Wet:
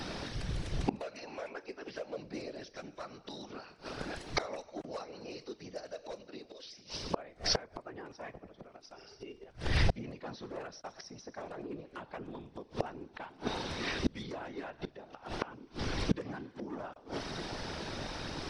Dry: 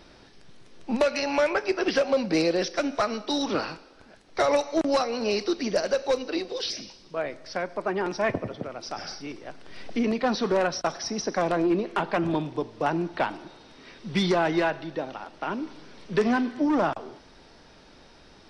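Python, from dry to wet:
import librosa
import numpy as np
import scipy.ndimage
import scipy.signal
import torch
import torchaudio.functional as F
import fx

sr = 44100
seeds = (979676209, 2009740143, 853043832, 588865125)

y = fx.whisperise(x, sr, seeds[0])
y = fx.small_body(y, sr, hz=(400.0, 2800.0), ring_ms=55, db=17, at=(8.94, 9.47))
y = fx.gate_flip(y, sr, shuts_db=-28.0, range_db=-31)
y = y * 10.0 ** (12.0 / 20.0)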